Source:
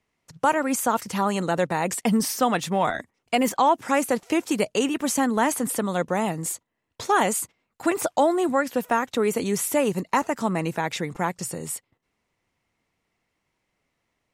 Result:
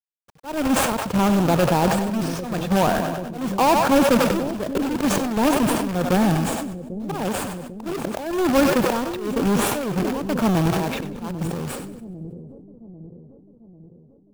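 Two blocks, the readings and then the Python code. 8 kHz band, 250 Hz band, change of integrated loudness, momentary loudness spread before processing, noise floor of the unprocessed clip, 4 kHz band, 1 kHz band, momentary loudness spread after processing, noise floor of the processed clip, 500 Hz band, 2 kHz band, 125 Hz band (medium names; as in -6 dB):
-2.0 dB, +5.0 dB, +2.5 dB, 7 LU, -77 dBFS, +3.5 dB, +0.5 dB, 14 LU, -52 dBFS, +2.0 dB, +0.5 dB, +8.5 dB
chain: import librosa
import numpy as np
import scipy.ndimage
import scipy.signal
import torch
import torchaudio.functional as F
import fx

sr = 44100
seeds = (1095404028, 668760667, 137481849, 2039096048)

p1 = fx.halfwave_hold(x, sr)
p2 = fx.high_shelf(p1, sr, hz=2100.0, db=-10.0)
p3 = fx.notch(p2, sr, hz=2000.0, q=5.3)
p4 = fx.level_steps(p3, sr, step_db=13)
p5 = p3 + (p4 * librosa.db_to_amplitude(3.0))
p6 = fx.auto_swell(p5, sr, attack_ms=319.0)
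p7 = fx.bass_treble(p6, sr, bass_db=1, treble_db=-11)
p8 = fx.quant_companded(p7, sr, bits=4)
p9 = fx.echo_split(p8, sr, split_hz=500.0, low_ms=795, high_ms=96, feedback_pct=52, wet_db=-12)
p10 = fx.sustainer(p9, sr, db_per_s=31.0)
y = p10 * librosa.db_to_amplitude(-3.5)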